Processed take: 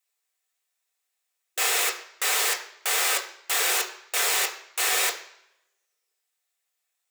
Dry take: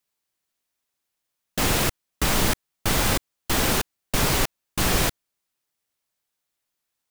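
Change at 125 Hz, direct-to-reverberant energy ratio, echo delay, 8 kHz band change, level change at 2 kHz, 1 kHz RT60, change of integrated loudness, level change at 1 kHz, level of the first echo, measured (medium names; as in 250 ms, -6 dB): under -40 dB, 0.0 dB, no echo, +2.5 dB, +1.5 dB, 0.75 s, 0.0 dB, -2.5 dB, no echo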